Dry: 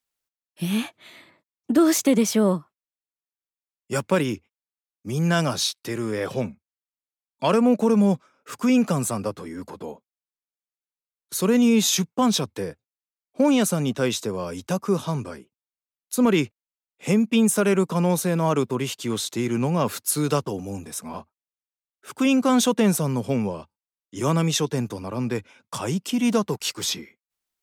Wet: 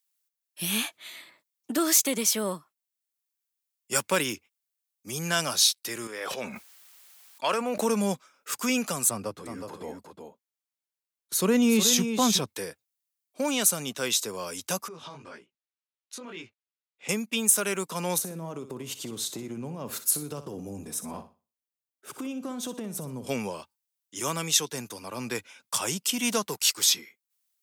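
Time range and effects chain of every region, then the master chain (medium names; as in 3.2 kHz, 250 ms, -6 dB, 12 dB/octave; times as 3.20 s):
6.07–7.81 s: high-pass 600 Hz 6 dB/octave + treble shelf 3.5 kHz -10.5 dB + decay stretcher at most 26 dB/s
9.09–12.47 s: tilt EQ -2.5 dB/octave + delay 367 ms -7.5 dB
14.88–17.09 s: low-pass 3.5 kHz + chorus 1.9 Hz, delay 17 ms, depth 5.2 ms + compression 4:1, threshold -35 dBFS
18.18–23.27 s: tilt shelf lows +10 dB, about 720 Hz + compression 8:1, threshold -25 dBFS + flutter echo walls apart 10.4 m, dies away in 0.31 s
whole clip: tilt EQ +3.5 dB/octave; level rider gain up to 4.5 dB; trim -6 dB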